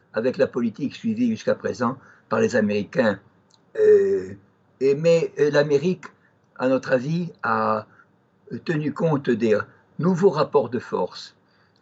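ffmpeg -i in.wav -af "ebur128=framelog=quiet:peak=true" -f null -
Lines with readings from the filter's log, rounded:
Integrated loudness:
  I:         -22.2 LUFS
  Threshold: -33.1 LUFS
Loudness range:
  LRA:         3.7 LU
  Threshold: -42.8 LUFS
  LRA low:   -24.9 LUFS
  LRA high:  -21.2 LUFS
True peak:
  Peak:       -6.6 dBFS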